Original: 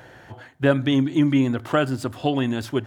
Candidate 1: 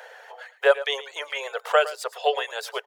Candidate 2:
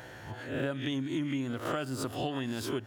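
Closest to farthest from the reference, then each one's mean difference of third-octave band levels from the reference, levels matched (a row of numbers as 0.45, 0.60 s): 2, 1; 7.5, 11.5 dB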